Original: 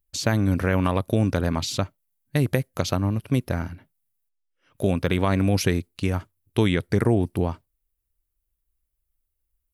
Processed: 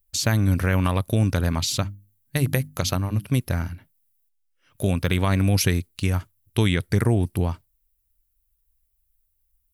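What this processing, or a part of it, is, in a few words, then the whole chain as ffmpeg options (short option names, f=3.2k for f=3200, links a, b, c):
smiley-face EQ: -filter_complex "[0:a]lowshelf=f=200:g=3.5,equalizer=f=400:t=o:w=3:g=-6.5,highshelf=f=9.2k:g=8.5,asplit=3[a][b][c];[a]afade=t=out:st=1.81:d=0.02[d];[b]bandreject=f=50:t=h:w=6,bandreject=f=100:t=h:w=6,bandreject=f=150:t=h:w=6,bandreject=f=200:t=h:w=6,bandreject=f=250:t=h:w=6,bandreject=f=300:t=h:w=6,afade=t=in:st=1.81:d=0.02,afade=t=out:st=3.26:d=0.02[e];[c]afade=t=in:st=3.26:d=0.02[f];[d][e][f]amix=inputs=3:normalize=0,volume=2.5dB"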